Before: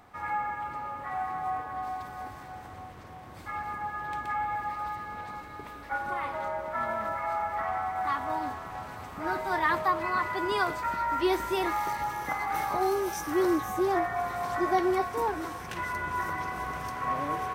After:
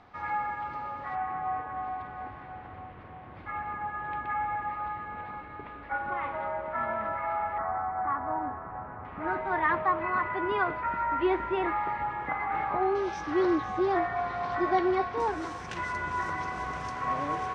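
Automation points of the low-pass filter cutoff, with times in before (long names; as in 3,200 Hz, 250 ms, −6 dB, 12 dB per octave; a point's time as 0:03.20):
low-pass filter 24 dB per octave
5,100 Hz
from 0:01.15 2,900 Hz
from 0:07.58 1,600 Hz
from 0:09.05 2,600 Hz
from 0:12.95 4,400 Hz
from 0:15.20 7,400 Hz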